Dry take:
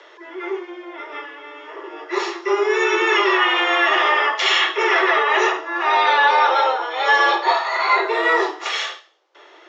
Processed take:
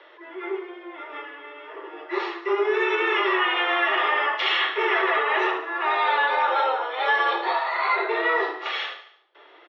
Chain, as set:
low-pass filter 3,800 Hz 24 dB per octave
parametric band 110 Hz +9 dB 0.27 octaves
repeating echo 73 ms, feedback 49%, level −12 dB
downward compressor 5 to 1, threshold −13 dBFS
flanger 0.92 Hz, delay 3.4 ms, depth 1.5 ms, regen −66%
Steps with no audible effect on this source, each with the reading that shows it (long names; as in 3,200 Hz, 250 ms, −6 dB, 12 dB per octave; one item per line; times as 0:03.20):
parametric band 110 Hz: nothing at its input below 290 Hz